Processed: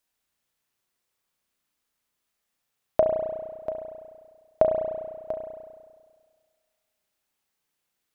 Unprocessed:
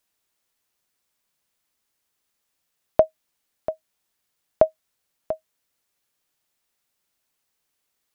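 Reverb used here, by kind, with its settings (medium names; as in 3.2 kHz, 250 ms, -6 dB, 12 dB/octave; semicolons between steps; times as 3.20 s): spring tank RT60 1.7 s, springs 33 ms, chirp 20 ms, DRR 1.5 dB; trim -4 dB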